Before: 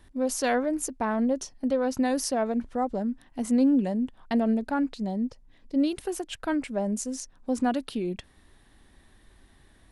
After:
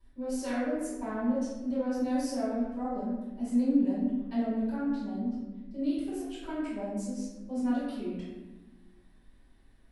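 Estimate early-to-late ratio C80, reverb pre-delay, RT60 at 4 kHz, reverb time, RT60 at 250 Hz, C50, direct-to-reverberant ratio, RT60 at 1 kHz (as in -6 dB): 2.0 dB, 3 ms, 0.70 s, 1.2 s, 1.9 s, -1.0 dB, -15.0 dB, 1.0 s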